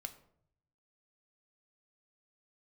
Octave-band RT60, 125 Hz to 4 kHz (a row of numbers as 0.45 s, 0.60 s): 1.2 s, 0.85 s, 0.75 s, 0.60 s, 0.45 s, 0.40 s